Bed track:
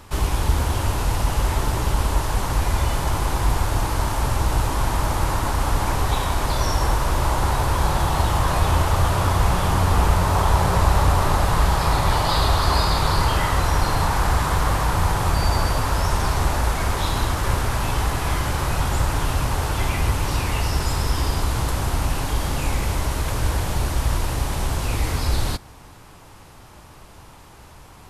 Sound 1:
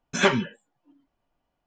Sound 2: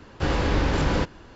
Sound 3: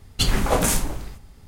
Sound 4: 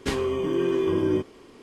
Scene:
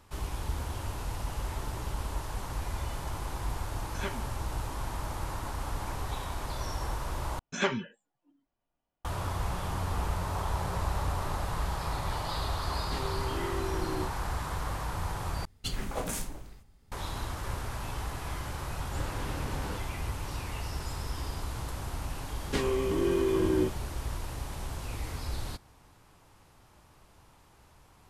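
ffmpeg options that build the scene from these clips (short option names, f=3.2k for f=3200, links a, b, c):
-filter_complex "[1:a]asplit=2[a][b];[4:a]asplit=2[c][d];[0:a]volume=-14dB,asplit=3[e][f][g];[e]atrim=end=7.394[h];[b]atrim=end=1.66,asetpts=PTS-STARTPTS,volume=-8.5dB[i];[f]atrim=start=9.046:end=15.454[j];[3:a]atrim=end=1.47,asetpts=PTS-STARTPTS,volume=-14dB[k];[g]atrim=start=16.916[l];[a]atrim=end=1.66,asetpts=PTS-STARTPTS,volume=-17.5dB,afade=t=in:d=0.004:c=hsin,afade=t=out:st=1.656:d=0.004:c=hsin,adelay=3800[m];[c]atrim=end=1.62,asetpts=PTS-STARTPTS,volume=-13dB,afade=t=in:d=0.004:c=hsin,afade=t=out:st=1.616:d=0.004:c=hsin,adelay=12860[n];[2:a]atrim=end=1.35,asetpts=PTS-STARTPTS,volume=-15.5dB,afade=t=in:d=0.004:c=hsin,afade=t=out:st=1.346:d=0.004:c=hsin,adelay=18740[o];[d]atrim=end=1.62,asetpts=PTS-STARTPTS,volume=-3.5dB,afade=t=in:d=0.004:c=hsin,afade=t=out:st=1.616:d=0.004:c=hsin,adelay=22470[p];[h][i]acrossfade=d=0.004:c1=hsin:c2=hsin[q];[q][j]acrossfade=d=0.004:c1=hsin:c2=hsin[r];[r][k]acrossfade=d=0.004:c1=hsin:c2=hsin[s];[s][l]acrossfade=d=0.004:c1=hsin:c2=hsin[t];[t][m][n][o][p]amix=inputs=5:normalize=0"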